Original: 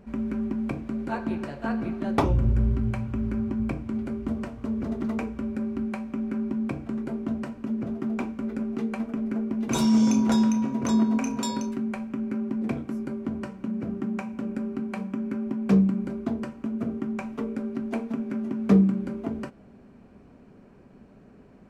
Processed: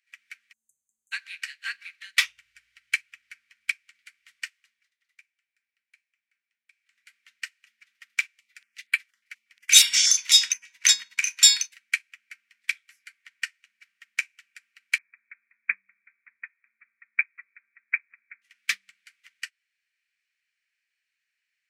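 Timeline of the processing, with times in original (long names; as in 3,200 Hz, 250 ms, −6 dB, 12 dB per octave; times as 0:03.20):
0:00.53–0:01.12: time-frequency box erased 730–6,100 Hz
0:04.48–0:07.15: duck −15.5 dB, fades 0.45 s
0:08.27–0:10.70: notch on a step sequencer 8.4 Hz 270–6,000 Hz
0:12.90–0:13.58: parametric band 1,800 Hz +3.5 dB 0.89 octaves
0:14.98–0:18.42: Chebyshev low-pass filter 2,500 Hz, order 10
whole clip: elliptic high-pass filter 1,900 Hz, stop band 60 dB; boost into a limiter +29 dB; expander for the loud parts 2.5 to 1, over −33 dBFS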